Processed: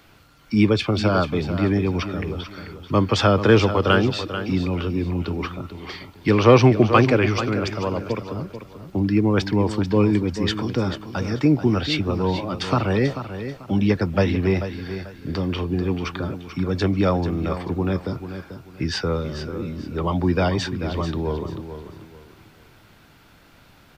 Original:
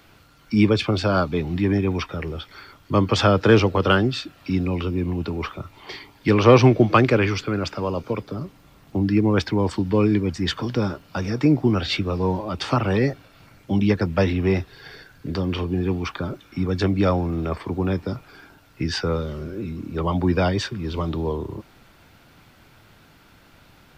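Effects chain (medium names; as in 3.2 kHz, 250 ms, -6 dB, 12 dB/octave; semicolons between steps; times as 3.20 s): feedback delay 439 ms, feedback 28%, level -10.5 dB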